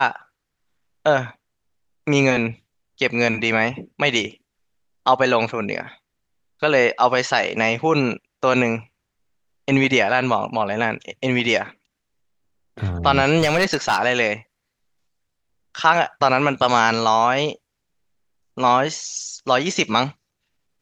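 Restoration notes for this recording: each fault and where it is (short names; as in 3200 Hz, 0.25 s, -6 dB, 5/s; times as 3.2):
13.38–14 clipped -12.5 dBFS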